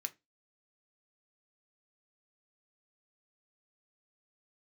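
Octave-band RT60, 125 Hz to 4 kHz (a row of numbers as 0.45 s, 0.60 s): 0.25 s, 0.25 s, 0.25 s, 0.20 s, 0.20 s, 0.20 s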